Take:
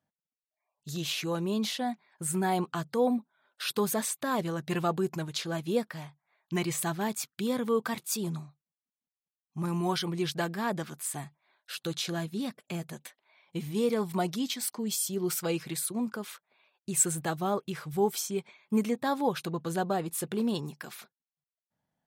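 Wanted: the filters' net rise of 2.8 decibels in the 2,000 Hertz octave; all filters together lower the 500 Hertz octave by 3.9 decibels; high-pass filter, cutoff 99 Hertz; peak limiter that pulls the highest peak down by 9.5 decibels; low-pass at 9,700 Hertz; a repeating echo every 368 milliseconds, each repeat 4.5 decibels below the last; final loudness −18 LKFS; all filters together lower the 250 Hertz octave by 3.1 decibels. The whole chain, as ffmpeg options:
ffmpeg -i in.wav -af "highpass=99,lowpass=9700,equalizer=frequency=250:width_type=o:gain=-3,equalizer=frequency=500:width_type=o:gain=-4,equalizer=frequency=2000:width_type=o:gain=4,alimiter=limit=-23dB:level=0:latency=1,aecho=1:1:368|736|1104|1472|1840|2208|2576|2944|3312:0.596|0.357|0.214|0.129|0.0772|0.0463|0.0278|0.0167|0.01,volume=15.5dB" out.wav

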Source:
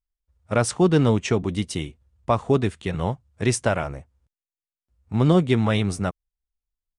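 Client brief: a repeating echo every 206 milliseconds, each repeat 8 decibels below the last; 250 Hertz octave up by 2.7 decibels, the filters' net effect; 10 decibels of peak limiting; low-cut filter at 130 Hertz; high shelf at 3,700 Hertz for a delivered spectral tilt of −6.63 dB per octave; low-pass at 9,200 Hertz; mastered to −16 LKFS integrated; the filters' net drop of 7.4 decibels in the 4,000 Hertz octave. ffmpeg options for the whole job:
ffmpeg -i in.wav -af "highpass=130,lowpass=9200,equalizer=frequency=250:width_type=o:gain=4.5,highshelf=frequency=3700:gain=-4,equalizer=frequency=4000:width_type=o:gain=-7.5,alimiter=limit=-15dB:level=0:latency=1,aecho=1:1:206|412|618|824|1030:0.398|0.159|0.0637|0.0255|0.0102,volume=11dB" out.wav

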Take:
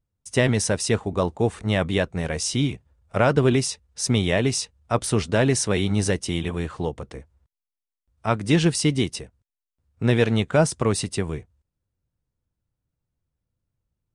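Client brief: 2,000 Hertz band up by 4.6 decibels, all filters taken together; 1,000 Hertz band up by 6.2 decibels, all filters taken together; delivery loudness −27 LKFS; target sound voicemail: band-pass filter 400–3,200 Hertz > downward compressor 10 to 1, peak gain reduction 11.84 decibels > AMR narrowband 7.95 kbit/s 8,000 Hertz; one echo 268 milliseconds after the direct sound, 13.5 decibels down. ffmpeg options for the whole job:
ffmpeg -i in.wav -af "highpass=400,lowpass=3200,equalizer=frequency=1000:width_type=o:gain=7.5,equalizer=frequency=2000:width_type=o:gain=4,aecho=1:1:268:0.211,acompressor=threshold=-22dB:ratio=10,volume=4dB" -ar 8000 -c:a libopencore_amrnb -b:a 7950 out.amr

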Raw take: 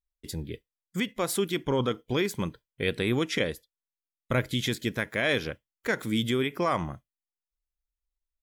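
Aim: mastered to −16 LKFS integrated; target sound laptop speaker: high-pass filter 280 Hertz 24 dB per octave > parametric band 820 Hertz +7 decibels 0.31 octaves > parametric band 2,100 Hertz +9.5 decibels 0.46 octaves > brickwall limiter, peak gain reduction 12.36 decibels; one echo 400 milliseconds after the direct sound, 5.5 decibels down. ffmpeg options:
ffmpeg -i in.wav -af "highpass=frequency=280:width=0.5412,highpass=frequency=280:width=1.3066,equalizer=frequency=820:width_type=o:width=0.31:gain=7,equalizer=frequency=2100:width_type=o:width=0.46:gain=9.5,aecho=1:1:400:0.531,volume=16.5dB,alimiter=limit=-5dB:level=0:latency=1" out.wav

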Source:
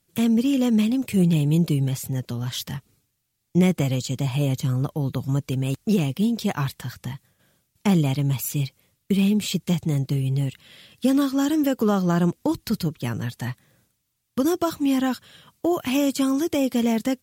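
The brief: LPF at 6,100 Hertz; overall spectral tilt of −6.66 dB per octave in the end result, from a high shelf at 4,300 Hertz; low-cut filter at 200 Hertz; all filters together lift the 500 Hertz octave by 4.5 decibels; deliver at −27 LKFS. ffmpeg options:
ffmpeg -i in.wav -af "highpass=200,lowpass=6100,equalizer=frequency=500:width_type=o:gain=6,highshelf=frequency=4300:gain=-7.5,volume=-3dB" out.wav

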